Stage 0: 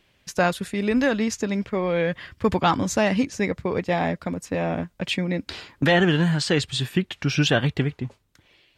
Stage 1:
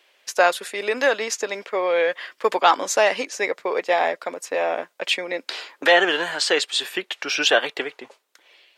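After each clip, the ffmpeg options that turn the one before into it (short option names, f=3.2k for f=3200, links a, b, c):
-af "highpass=f=440:w=0.5412,highpass=f=440:w=1.3066,volume=5dB"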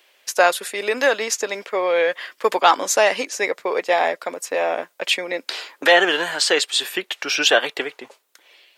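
-af "highshelf=f=9.7k:g=10,volume=1.5dB"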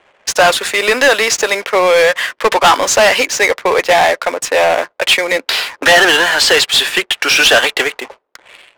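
-filter_complex "[0:a]asplit=2[a][b];[b]highpass=f=720:p=1,volume=22dB,asoftclip=type=tanh:threshold=-1dB[c];[a][c]amix=inputs=2:normalize=0,lowpass=f=7.2k:p=1,volume=-6dB,adynamicsmooth=sensitivity=6:basefreq=510"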